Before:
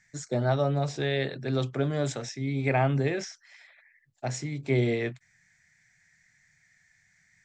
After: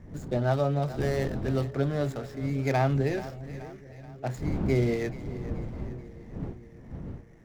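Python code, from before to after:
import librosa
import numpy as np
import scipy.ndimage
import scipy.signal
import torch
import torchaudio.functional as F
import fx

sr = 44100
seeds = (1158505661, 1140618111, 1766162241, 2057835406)

y = scipy.ndimage.median_filter(x, 15, mode='constant')
y = fx.dmg_wind(y, sr, seeds[0], corner_hz=200.0, level_db=-38.0)
y = fx.echo_split(y, sr, split_hz=510.0, low_ms=577, high_ms=430, feedback_pct=52, wet_db=-15.0)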